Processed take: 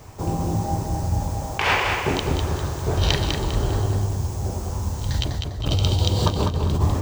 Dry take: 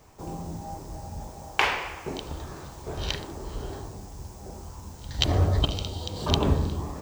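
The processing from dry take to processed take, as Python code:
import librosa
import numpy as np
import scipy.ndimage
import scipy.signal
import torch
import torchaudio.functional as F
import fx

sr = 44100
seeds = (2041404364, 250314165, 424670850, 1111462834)

y = fx.peak_eq(x, sr, hz=100.0, db=9.5, octaves=0.65)
y = fx.over_compress(y, sr, threshold_db=-27.0, ratio=-1.0)
y = fx.echo_feedback(y, sr, ms=200, feedback_pct=35, wet_db=-5.0)
y = y * librosa.db_to_amplitude(5.5)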